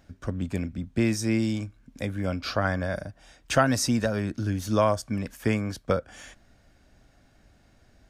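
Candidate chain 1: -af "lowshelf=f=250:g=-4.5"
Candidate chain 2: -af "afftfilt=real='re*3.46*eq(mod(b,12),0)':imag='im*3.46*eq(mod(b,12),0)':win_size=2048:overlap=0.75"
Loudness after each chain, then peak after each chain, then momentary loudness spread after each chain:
-29.0 LUFS, -30.0 LUFS; -9.5 dBFS, -10.5 dBFS; 13 LU, 17 LU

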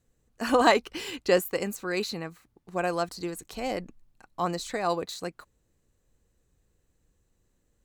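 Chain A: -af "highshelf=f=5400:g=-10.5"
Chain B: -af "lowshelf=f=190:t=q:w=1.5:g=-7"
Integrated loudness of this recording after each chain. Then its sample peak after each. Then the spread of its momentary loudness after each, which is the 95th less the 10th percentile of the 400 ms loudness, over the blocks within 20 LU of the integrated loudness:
-29.0 LUFS, -28.0 LUFS; -8.5 dBFS, -6.5 dBFS; 15 LU, 14 LU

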